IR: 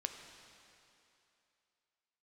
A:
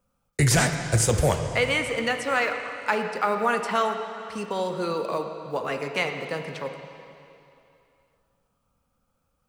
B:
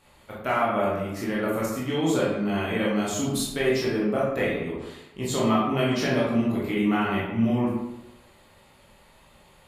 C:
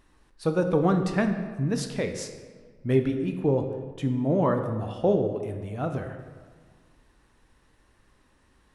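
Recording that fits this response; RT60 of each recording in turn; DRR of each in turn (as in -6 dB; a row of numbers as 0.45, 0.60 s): A; 2.8, 1.0, 1.7 s; 5.0, -6.5, 5.5 dB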